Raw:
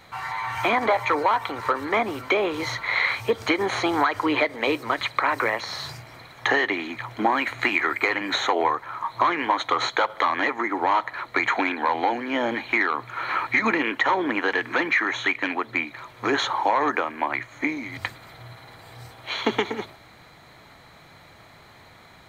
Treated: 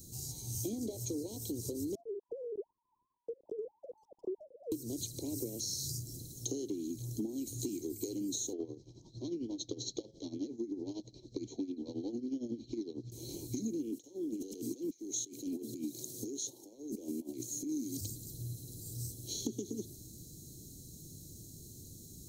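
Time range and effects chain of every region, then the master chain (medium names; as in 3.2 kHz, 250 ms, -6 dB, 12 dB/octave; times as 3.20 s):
1.95–4.72 s: formants replaced by sine waves + brick-wall FIR low-pass 1.3 kHz + compression, threshold -27 dBFS
8.53–13.12 s: steep low-pass 5.6 kHz + tremolo 11 Hz, depth 77%
13.92–18.01 s: high-pass 240 Hz + compressor with a negative ratio -33 dBFS
whole clip: Chebyshev band-stop 350–5900 Hz, order 3; tone controls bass +3 dB, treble +13 dB; compression, threshold -36 dBFS; trim +1 dB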